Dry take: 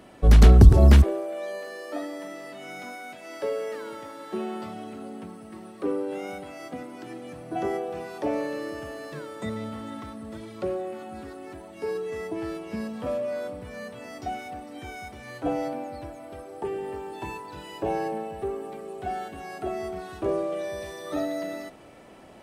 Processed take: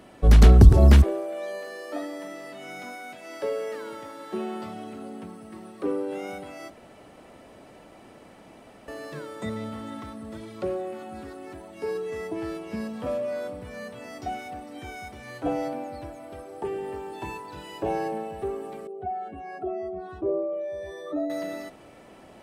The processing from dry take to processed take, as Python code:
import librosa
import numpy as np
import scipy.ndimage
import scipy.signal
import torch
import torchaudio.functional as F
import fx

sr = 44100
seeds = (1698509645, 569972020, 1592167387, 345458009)

y = fx.spec_expand(x, sr, power=1.7, at=(18.87, 21.3))
y = fx.edit(y, sr, fx.room_tone_fill(start_s=6.7, length_s=2.18), tone=tone)